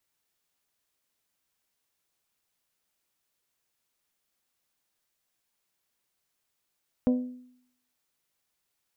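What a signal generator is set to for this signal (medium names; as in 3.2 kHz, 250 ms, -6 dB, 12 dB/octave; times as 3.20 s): glass hit bell, lowest mode 250 Hz, decay 0.69 s, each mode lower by 8 dB, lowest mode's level -18 dB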